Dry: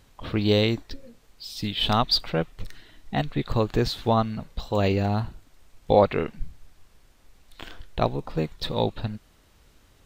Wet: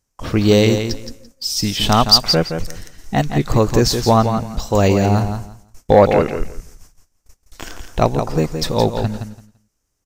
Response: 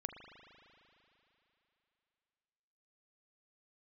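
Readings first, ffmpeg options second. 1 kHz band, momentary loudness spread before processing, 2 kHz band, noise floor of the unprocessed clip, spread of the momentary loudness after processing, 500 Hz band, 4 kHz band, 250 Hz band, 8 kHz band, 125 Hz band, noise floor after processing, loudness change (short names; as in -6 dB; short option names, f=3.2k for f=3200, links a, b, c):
+8.5 dB, 23 LU, +8.0 dB, -59 dBFS, 17 LU, +9.0 dB, +9.5 dB, +9.5 dB, n/a, +9.0 dB, -71 dBFS, +9.0 dB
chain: -filter_complex "[0:a]agate=range=-27dB:threshold=-47dB:ratio=16:detection=peak,highshelf=f=4.7k:t=q:w=3:g=7,aecho=1:1:169|338|507:0.398|0.0717|0.0129,asplit=2[a][b];[b]aeval=exprs='0.562*sin(PI/2*1.78*val(0)/0.562)':c=same,volume=-8dB[c];[a][c]amix=inputs=2:normalize=0,volume=2.5dB"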